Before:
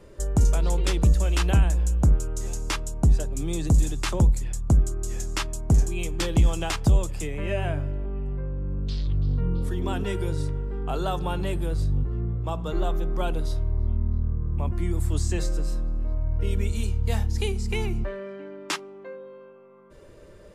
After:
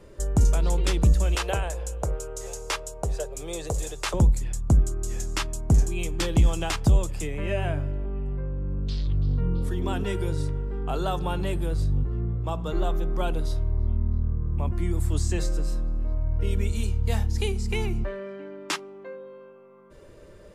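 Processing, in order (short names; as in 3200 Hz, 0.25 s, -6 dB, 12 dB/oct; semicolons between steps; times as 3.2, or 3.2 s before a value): 1.35–4.14 resonant low shelf 350 Hz -10 dB, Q 3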